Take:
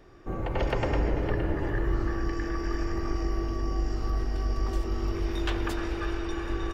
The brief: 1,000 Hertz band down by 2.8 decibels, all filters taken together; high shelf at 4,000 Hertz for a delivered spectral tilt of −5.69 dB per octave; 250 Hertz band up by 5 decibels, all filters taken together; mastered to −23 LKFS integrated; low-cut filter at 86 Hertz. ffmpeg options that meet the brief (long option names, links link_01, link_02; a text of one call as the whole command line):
ffmpeg -i in.wav -af "highpass=86,equalizer=frequency=250:width_type=o:gain=8,equalizer=frequency=1000:width_type=o:gain=-4.5,highshelf=frequency=4000:gain=6.5,volume=7.5dB" out.wav